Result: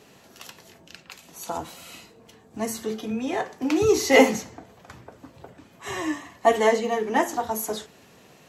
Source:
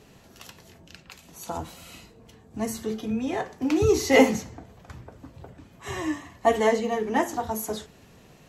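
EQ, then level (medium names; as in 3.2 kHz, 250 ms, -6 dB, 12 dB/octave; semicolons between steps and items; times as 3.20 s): high-pass 280 Hz 6 dB/octave; +3.0 dB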